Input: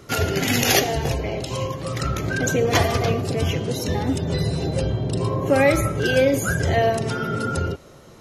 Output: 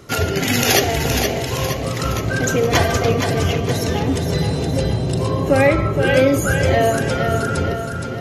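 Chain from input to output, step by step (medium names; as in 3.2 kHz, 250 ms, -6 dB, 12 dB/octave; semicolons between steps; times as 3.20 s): 5.67–6.14 s: low-pass 3.2 kHz 24 dB/octave; two-band feedback delay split 350 Hz, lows 647 ms, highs 469 ms, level -6 dB; trim +2.5 dB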